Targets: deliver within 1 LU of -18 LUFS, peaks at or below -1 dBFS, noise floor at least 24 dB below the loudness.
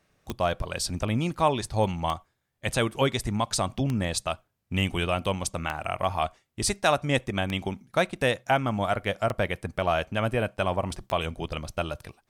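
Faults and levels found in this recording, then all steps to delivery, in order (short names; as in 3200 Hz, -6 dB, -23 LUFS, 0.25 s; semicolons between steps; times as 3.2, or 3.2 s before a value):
clicks 7; loudness -28.0 LUFS; peak -9.5 dBFS; loudness target -18.0 LUFS
-> de-click; gain +10 dB; limiter -1 dBFS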